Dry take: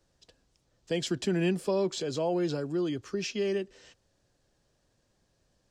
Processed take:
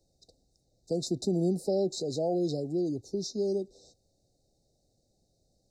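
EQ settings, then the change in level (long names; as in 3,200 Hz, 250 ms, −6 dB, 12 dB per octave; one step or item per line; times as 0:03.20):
linear-phase brick-wall band-stop 840–3,600 Hz
0.0 dB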